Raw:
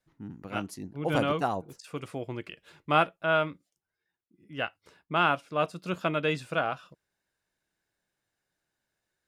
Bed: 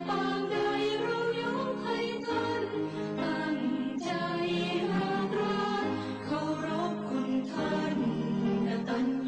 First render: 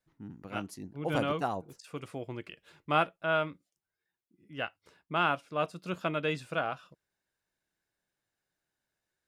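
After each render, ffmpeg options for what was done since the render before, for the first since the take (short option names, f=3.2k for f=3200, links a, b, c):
-af "volume=-3.5dB"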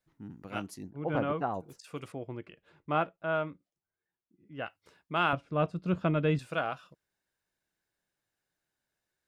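-filter_complex "[0:a]asplit=3[a][b][c];[a]afade=t=out:st=0.89:d=0.02[d];[b]lowpass=1.8k,afade=t=in:st=0.89:d=0.02,afade=t=out:st=1.53:d=0.02[e];[c]afade=t=in:st=1.53:d=0.02[f];[d][e][f]amix=inputs=3:normalize=0,asettb=1/sr,asplit=3[g][h][i];[g]atrim=end=2.124[j];[h]atrim=start=2.12:end=4.66,asetpts=PTS-STARTPTS,afade=t=in:d=0.004:c=qsin,afade=t=out:st=2.536:d=0.004:c=qsin,lowpass=f=1.2k:p=1[k];[i]atrim=start=4.656[l];[j][k]acrossfade=d=0.004:c1=hsin:c2=qsin[m];[m][l]acrossfade=d=0.004:c1=qsin:c2=hsin,asettb=1/sr,asplit=3[n][o][p];[n]atrim=end=5.334[q];[o]atrim=start=5.33:end=6.39,asetpts=PTS-STARTPTS,afade=t=in:d=0.004:c=qsin,afade=t=out:st=1.056:d=0.004:c=qsin,aemphasis=mode=reproduction:type=riaa[r];[p]atrim=start=6.386[s];[q][r]acrossfade=d=0.004:c1=hsin:c2=qsin[t];[t][s]acrossfade=d=0.004:c1=qsin:c2=hsin"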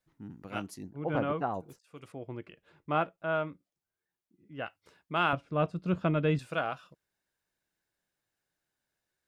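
-filter_complex "[0:a]asplit=2[a][b];[a]atrim=end=1.79,asetpts=PTS-STARTPTS,afade=t=out:st=1.786:d=0.004:c=hsin:silence=0.0749894[c];[b]atrim=start=1.79,asetpts=PTS-STARTPTS,afade=t=in:d=0.55:silence=0.0749894[d];[c][d]concat=n=2:v=0:a=1"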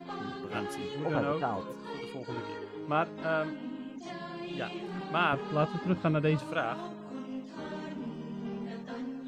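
-filter_complex "[1:a]volume=-9dB[a];[0:a][a]amix=inputs=2:normalize=0"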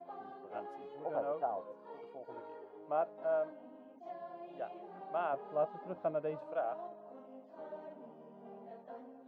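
-af "bandpass=f=660:t=q:w=3.4:csg=0"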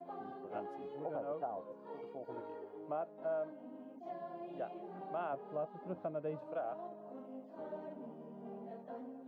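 -filter_complex "[0:a]acrossover=split=370|1100[a][b][c];[a]acontrast=80[d];[d][b][c]amix=inputs=3:normalize=0,alimiter=level_in=6dB:limit=-24dB:level=0:latency=1:release=467,volume=-6dB"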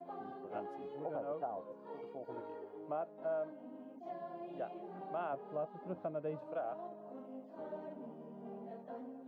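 -af anull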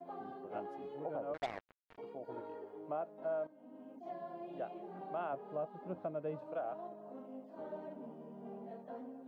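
-filter_complex "[0:a]asettb=1/sr,asplit=3[a][b][c];[a]atrim=end=1.344[d];[b]atrim=start=1.34:end=1.98,asetpts=PTS-STARTPTS,afade=t=in:d=0.004:c=qsin,afade=t=out:st=0.636:d=0.004:c=qsin,acrusher=bits=5:mix=0:aa=0.5[e];[c]atrim=start=1.976[f];[d][e]acrossfade=d=0.004:c1=hsin:c2=qsin[g];[g][f]acrossfade=d=0.004:c1=qsin:c2=hsin,asplit=2[h][i];[h]atrim=end=3.47,asetpts=PTS-STARTPTS,afade=t=out:st=3.466:d=0.004:c=hsin:silence=0.199526[j];[i]atrim=start=3.47,asetpts=PTS-STARTPTS,afade=t=in:d=0.45:silence=0.199526[k];[j][k]concat=n=2:v=0:a=1"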